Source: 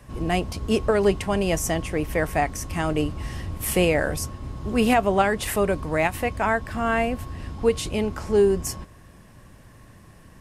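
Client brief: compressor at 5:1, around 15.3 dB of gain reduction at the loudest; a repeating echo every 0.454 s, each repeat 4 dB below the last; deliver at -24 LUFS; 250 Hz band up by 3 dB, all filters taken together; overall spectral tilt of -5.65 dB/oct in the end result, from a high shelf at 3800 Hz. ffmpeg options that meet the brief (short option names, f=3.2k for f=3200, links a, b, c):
-af "equalizer=f=250:t=o:g=4,highshelf=f=3.8k:g=-5,acompressor=threshold=-31dB:ratio=5,aecho=1:1:454|908|1362|1816|2270|2724|3178|3632|4086:0.631|0.398|0.25|0.158|0.0994|0.0626|0.0394|0.0249|0.0157,volume=8.5dB"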